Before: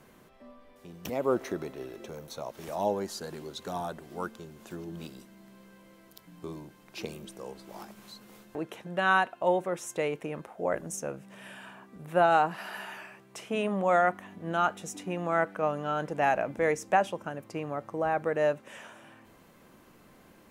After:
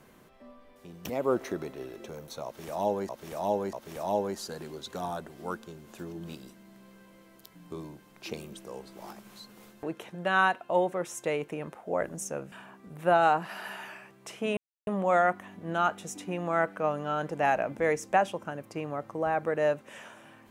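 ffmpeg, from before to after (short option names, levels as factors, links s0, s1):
-filter_complex "[0:a]asplit=5[s0][s1][s2][s3][s4];[s0]atrim=end=3.092[s5];[s1]atrim=start=2.448:end=3.092[s6];[s2]atrim=start=2.448:end=11.242[s7];[s3]atrim=start=11.608:end=13.66,asetpts=PTS-STARTPTS,afade=t=out:st=2.048:d=0.004:c=hsin,apad=pad_dur=0.3[s8];[s4]atrim=start=13.66,asetpts=PTS-STARTPTS,afade=t=in:d=0.004:c=hsin[s9];[s5][s6]acrossfade=d=0.004:c1=hsin:c2=hsin[s10];[s10][s7]acrossfade=d=0.004:c1=hsin:c2=hsin[s11];[s8][s9]concat=n=2:v=0:a=1[s12];[s11][s12]acrossfade=d=0.004:c1=hsin:c2=hsin"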